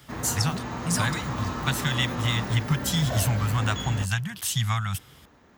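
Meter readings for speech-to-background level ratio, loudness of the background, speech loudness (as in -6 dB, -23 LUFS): 5.5 dB, -32.5 LUFS, -27.0 LUFS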